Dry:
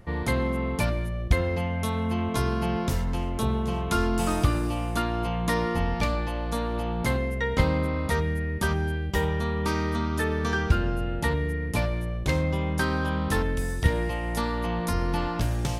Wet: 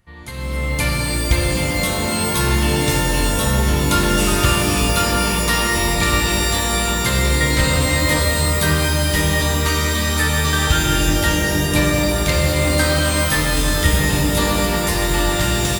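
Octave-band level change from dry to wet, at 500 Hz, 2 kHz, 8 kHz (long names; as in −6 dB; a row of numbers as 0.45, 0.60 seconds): +7.5, +12.0, +20.5 decibels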